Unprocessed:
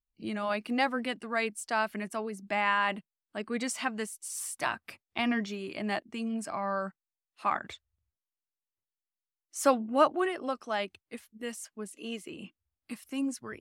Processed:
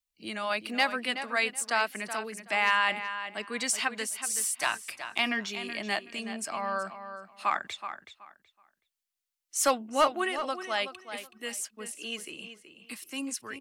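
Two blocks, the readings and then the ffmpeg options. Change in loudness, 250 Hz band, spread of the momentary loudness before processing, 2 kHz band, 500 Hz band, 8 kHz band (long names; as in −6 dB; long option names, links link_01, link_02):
+2.0 dB, −5.0 dB, 15 LU, +4.5 dB, −1.5 dB, +8.0 dB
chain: -filter_complex "[0:a]lowshelf=frequency=400:gain=-10.5,acrossover=split=150|540|2100[link_01][link_02][link_03][link_04];[link_04]acontrast=45[link_05];[link_01][link_02][link_03][link_05]amix=inputs=4:normalize=0,volume=17.5dB,asoftclip=hard,volume=-17.5dB,asplit=2[link_06][link_07];[link_07]adelay=375,lowpass=frequency=4700:poles=1,volume=-10dB,asplit=2[link_08][link_09];[link_09]adelay=375,lowpass=frequency=4700:poles=1,volume=0.22,asplit=2[link_10][link_11];[link_11]adelay=375,lowpass=frequency=4700:poles=1,volume=0.22[link_12];[link_06][link_08][link_10][link_12]amix=inputs=4:normalize=0,volume=2dB"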